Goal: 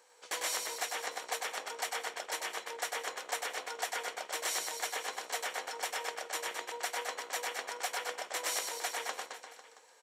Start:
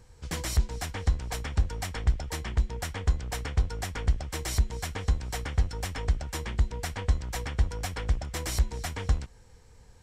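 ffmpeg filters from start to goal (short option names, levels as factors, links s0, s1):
-af "highpass=f=490:w=0.5412,highpass=f=490:w=1.3066,bandreject=f=5100:w=16,aecho=1:1:100|215|347.2|499.3|674.2:0.631|0.398|0.251|0.158|0.1"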